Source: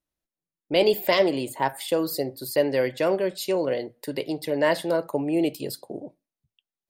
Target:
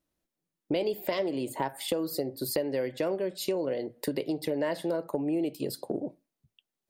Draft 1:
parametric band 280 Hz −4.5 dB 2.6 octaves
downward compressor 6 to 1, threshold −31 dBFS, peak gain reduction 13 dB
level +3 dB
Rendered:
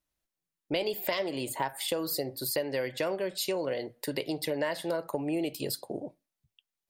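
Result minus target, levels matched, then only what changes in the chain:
250 Hz band −2.5 dB
change: parametric band 280 Hz +6 dB 2.6 octaves

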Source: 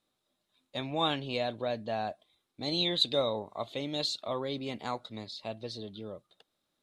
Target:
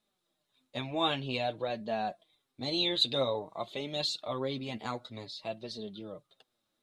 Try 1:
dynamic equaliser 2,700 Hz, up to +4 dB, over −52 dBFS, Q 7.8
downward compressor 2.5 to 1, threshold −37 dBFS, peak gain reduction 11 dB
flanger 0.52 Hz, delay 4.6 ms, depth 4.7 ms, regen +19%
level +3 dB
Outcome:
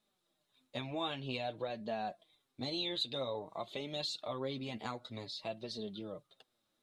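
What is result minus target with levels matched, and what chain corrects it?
downward compressor: peak gain reduction +11 dB
dynamic equaliser 2,700 Hz, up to +4 dB, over −52 dBFS, Q 7.8
flanger 0.52 Hz, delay 4.6 ms, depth 4.7 ms, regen +19%
level +3 dB

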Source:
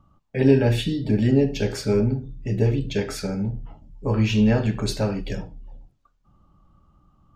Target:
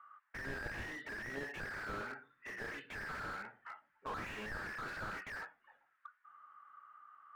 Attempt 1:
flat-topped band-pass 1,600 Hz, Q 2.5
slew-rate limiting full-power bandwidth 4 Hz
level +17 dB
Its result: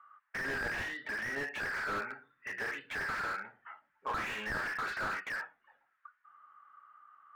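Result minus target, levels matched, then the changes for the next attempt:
slew-rate limiting: distortion −6 dB
change: slew-rate limiting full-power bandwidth 1.5 Hz

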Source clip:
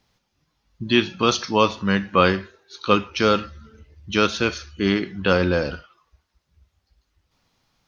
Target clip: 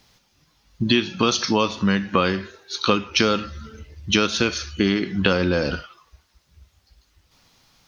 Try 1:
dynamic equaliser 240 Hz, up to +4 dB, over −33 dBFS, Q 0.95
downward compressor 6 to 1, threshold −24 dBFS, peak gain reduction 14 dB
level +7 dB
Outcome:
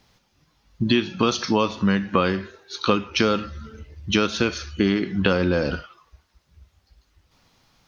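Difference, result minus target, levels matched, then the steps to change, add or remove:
4,000 Hz band −3.0 dB
add after downward compressor: high-shelf EQ 2,700 Hz +6.5 dB

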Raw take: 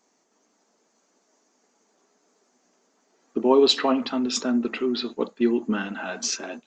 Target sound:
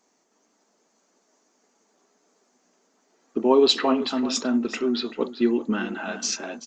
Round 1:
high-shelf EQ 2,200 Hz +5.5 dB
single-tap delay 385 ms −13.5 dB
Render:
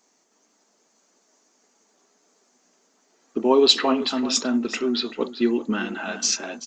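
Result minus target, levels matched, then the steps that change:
4,000 Hz band +3.0 dB
remove: high-shelf EQ 2,200 Hz +5.5 dB

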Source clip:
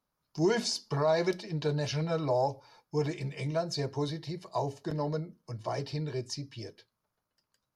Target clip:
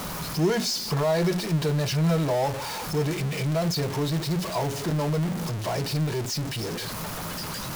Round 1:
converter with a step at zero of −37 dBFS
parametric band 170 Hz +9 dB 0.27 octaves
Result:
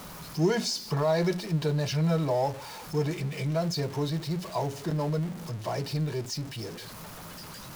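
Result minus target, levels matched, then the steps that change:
converter with a step at zero: distortion −7 dB
change: converter with a step at zero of −27 dBFS

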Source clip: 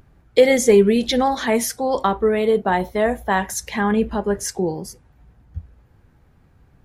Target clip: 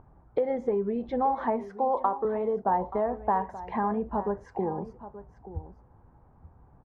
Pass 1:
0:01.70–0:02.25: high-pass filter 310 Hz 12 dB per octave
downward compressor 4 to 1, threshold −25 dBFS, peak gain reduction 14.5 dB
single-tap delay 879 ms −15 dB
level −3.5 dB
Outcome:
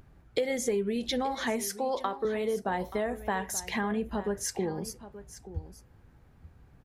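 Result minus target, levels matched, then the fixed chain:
1,000 Hz band −4.5 dB
0:01.70–0:02.25: high-pass filter 310 Hz 12 dB per octave
downward compressor 4 to 1, threshold −25 dBFS, peak gain reduction 14.5 dB
low-pass with resonance 950 Hz, resonance Q 2.7
single-tap delay 879 ms −15 dB
level −3.5 dB

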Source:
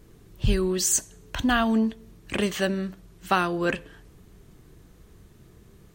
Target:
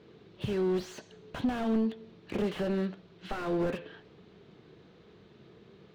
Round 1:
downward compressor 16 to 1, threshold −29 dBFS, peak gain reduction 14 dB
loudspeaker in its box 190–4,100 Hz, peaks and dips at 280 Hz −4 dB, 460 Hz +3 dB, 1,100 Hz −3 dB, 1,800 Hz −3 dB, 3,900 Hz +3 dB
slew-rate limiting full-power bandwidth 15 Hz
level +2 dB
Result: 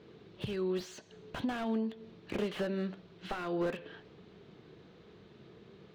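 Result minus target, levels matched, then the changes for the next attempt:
downward compressor: peak gain reduction +6 dB
change: downward compressor 16 to 1, threshold −22.5 dBFS, peak gain reduction 8 dB

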